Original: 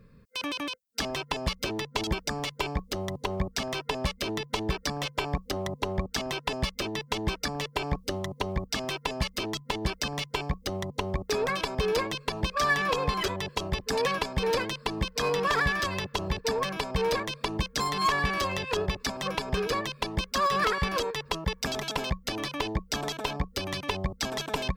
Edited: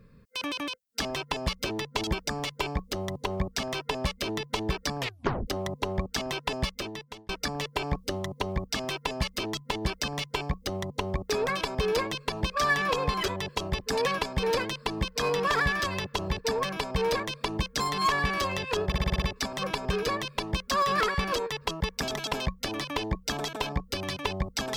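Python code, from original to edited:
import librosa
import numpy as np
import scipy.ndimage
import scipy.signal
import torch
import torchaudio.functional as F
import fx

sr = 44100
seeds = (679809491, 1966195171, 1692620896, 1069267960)

y = fx.edit(x, sr, fx.tape_stop(start_s=4.99, length_s=0.48),
    fx.fade_out_span(start_s=6.63, length_s=0.66),
    fx.stutter(start_s=18.86, slice_s=0.06, count=7), tone=tone)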